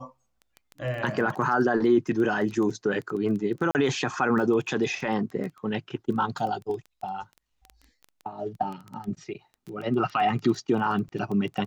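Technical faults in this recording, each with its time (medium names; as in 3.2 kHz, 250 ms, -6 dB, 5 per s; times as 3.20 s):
crackle 12 per s
3.71–3.75 s: dropout 39 ms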